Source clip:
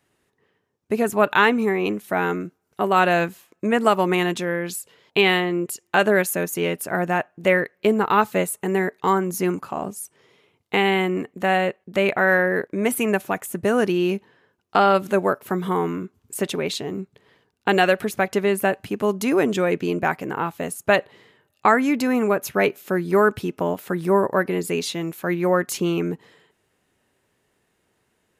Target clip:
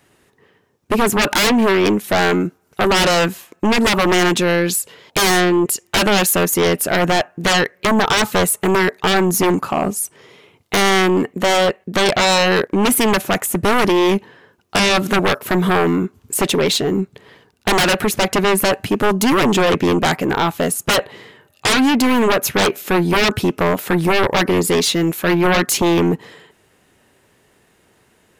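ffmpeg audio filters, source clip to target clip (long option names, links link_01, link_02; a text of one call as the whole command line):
ffmpeg -i in.wav -af "aeval=exprs='0.668*sin(PI/2*6.31*val(0)/0.668)':channel_layout=same,volume=-7.5dB" out.wav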